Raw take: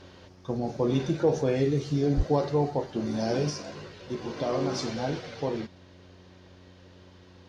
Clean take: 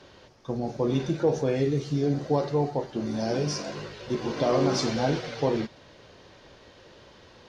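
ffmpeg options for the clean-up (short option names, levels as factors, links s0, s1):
-filter_complex "[0:a]bandreject=f=91:t=h:w=4,bandreject=f=182:t=h:w=4,bandreject=f=273:t=h:w=4,bandreject=f=364:t=h:w=4,asplit=3[s0][s1][s2];[s0]afade=t=out:st=2.16:d=0.02[s3];[s1]highpass=f=140:w=0.5412,highpass=f=140:w=1.3066,afade=t=in:st=2.16:d=0.02,afade=t=out:st=2.28:d=0.02[s4];[s2]afade=t=in:st=2.28:d=0.02[s5];[s3][s4][s5]amix=inputs=3:normalize=0,asetnsamples=n=441:p=0,asendcmd='3.5 volume volume 5dB',volume=1"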